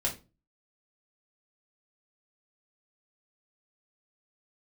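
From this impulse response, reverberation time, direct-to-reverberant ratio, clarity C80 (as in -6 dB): 0.30 s, -3.5 dB, 18.5 dB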